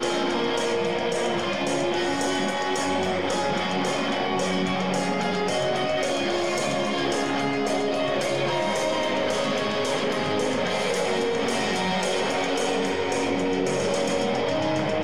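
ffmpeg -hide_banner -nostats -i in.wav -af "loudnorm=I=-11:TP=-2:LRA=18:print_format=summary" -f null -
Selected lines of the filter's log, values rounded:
Input Integrated:    -24.6 LUFS
Input True Peak:     -13.1 dBTP
Input LRA:             0.3 LU
Input Threshold:     -34.6 LUFS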